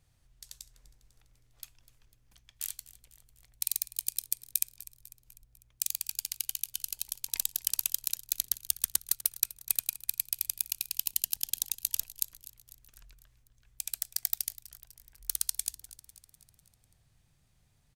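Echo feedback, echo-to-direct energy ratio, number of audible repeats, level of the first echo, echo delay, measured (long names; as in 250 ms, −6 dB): 56%, −16.5 dB, 4, −18.0 dB, 249 ms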